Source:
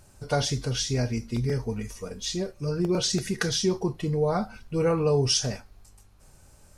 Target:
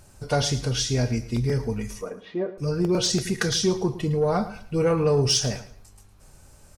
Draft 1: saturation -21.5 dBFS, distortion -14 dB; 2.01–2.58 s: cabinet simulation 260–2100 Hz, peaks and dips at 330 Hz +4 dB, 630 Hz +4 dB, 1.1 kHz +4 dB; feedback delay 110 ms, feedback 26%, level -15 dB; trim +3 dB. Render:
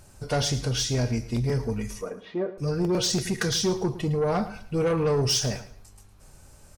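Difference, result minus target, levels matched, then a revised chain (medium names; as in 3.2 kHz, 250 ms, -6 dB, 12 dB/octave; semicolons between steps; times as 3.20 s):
saturation: distortion +11 dB
saturation -13.5 dBFS, distortion -25 dB; 2.01–2.58 s: cabinet simulation 260–2100 Hz, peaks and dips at 330 Hz +4 dB, 630 Hz +4 dB, 1.1 kHz +4 dB; feedback delay 110 ms, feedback 26%, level -15 dB; trim +3 dB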